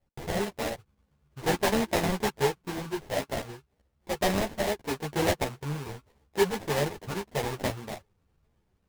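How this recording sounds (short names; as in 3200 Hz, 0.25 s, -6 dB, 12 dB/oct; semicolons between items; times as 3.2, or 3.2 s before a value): aliases and images of a low sample rate 1300 Hz, jitter 20%; random-step tremolo; a shimmering, thickened sound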